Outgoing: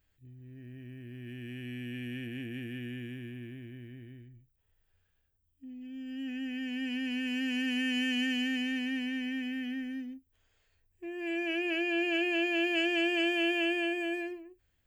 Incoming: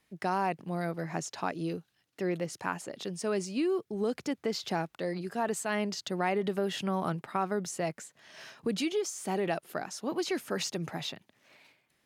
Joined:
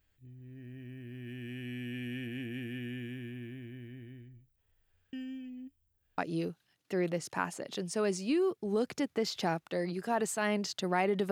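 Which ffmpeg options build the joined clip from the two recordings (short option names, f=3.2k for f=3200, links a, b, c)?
-filter_complex "[0:a]apad=whole_dur=11.31,atrim=end=11.31,asplit=2[a][b];[a]atrim=end=5.132[c];[b]atrim=start=5.128:end=6.182,asetpts=PTS-STARTPTS,areverse[d];[1:a]atrim=start=1.458:end=6.59[e];[c][d]acrossfade=d=0.004:c1=hsin:c2=hsin[f];[f][e]acrossfade=d=0.004:c1=hsin:c2=hsin"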